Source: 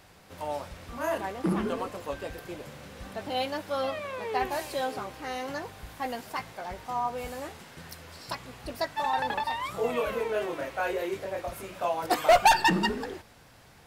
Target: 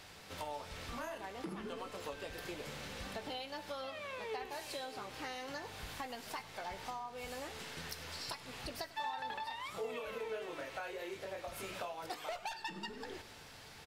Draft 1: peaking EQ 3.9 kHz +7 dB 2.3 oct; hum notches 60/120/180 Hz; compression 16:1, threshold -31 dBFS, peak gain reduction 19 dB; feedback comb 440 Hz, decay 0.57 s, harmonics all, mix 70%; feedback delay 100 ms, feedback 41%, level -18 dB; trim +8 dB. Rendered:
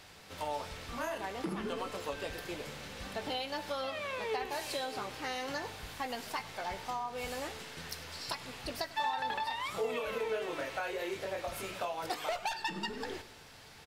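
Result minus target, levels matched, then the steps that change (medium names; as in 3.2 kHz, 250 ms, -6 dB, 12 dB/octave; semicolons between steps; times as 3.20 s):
compression: peak gain reduction -6.5 dB
change: compression 16:1, threshold -38 dBFS, peak gain reduction 25.5 dB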